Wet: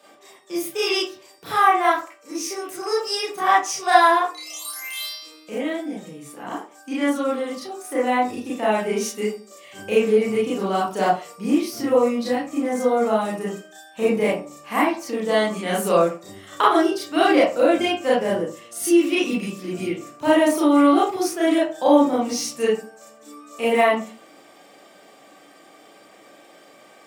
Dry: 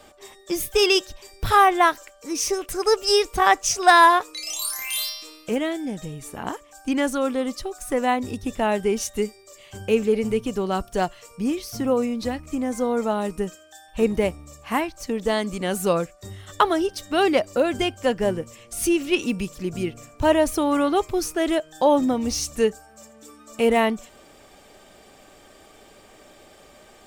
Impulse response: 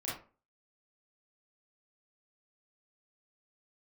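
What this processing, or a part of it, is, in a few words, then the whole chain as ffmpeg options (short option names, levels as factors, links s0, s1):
far laptop microphone: -filter_complex "[0:a]asettb=1/sr,asplit=3[s0][s1][s2];[s0]atrim=end=18.344[s3];[s1]atrim=start=18.34:end=18.96,asetpts=PTS-STARTPTS,afade=t=in:d=0.004:c=qsin,afade=t=out:st=0.616:d=0.004:c=qsin,bandreject=f=2400:w=6.8[s4];[s2]atrim=start=18.956[s5];[s3][s4]acrossfade=d=0.004:c1=hsin:c2=qsin[s6];[s6][s5]acrossfade=d=0.004:c1=qsin:c2=hsin[s7];[1:a]atrim=start_sample=2205[s8];[s7][s8]afir=irnorm=-1:irlink=0,highpass=f=170:w=0.5412,highpass=f=170:w=1.3066,dynaudnorm=f=290:g=31:m=1.58,equalizer=f=170:t=o:w=2.6:g=-2.5"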